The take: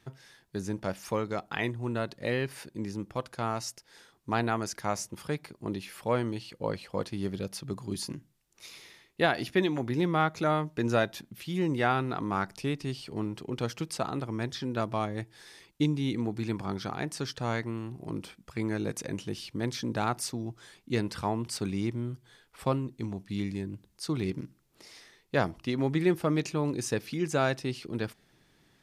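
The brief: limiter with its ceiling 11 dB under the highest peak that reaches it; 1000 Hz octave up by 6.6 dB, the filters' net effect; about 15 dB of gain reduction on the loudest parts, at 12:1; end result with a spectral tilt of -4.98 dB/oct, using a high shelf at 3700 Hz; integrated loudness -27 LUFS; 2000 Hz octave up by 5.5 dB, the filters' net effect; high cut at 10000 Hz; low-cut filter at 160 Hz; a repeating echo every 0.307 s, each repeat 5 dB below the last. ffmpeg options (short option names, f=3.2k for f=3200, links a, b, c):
-af "highpass=160,lowpass=10k,equalizer=f=1k:t=o:g=8,equalizer=f=2k:t=o:g=5.5,highshelf=f=3.7k:g=-6,acompressor=threshold=-32dB:ratio=12,alimiter=level_in=3.5dB:limit=-24dB:level=0:latency=1,volume=-3.5dB,aecho=1:1:307|614|921|1228|1535|1842|2149:0.562|0.315|0.176|0.0988|0.0553|0.031|0.0173,volume=13dB"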